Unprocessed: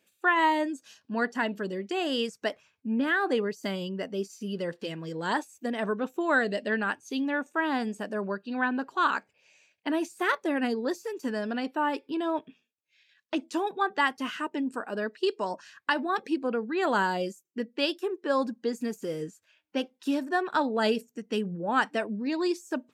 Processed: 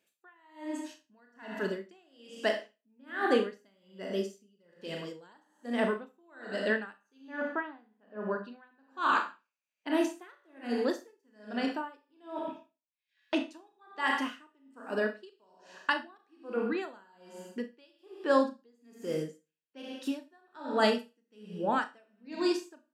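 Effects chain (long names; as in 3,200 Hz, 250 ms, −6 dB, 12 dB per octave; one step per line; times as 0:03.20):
low-shelf EQ 120 Hz −6 dB
automatic gain control gain up to 7 dB
0:07.18–0:08.38: high-frequency loss of the air 360 metres
four-comb reverb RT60 0.62 s, combs from 26 ms, DRR 3 dB
tremolo with a sine in dB 1.2 Hz, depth 38 dB
level −6 dB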